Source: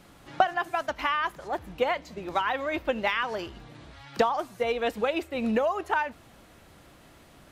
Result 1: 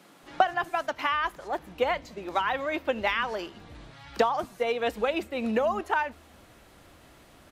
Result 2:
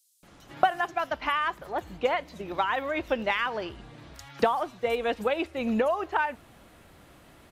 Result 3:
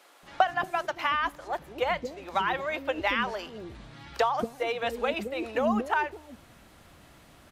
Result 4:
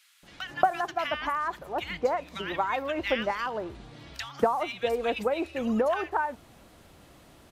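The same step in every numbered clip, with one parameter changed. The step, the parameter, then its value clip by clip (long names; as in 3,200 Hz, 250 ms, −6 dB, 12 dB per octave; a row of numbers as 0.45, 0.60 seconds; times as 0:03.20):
multiband delay without the direct sound, split: 160, 5,500, 400, 1,700 Hertz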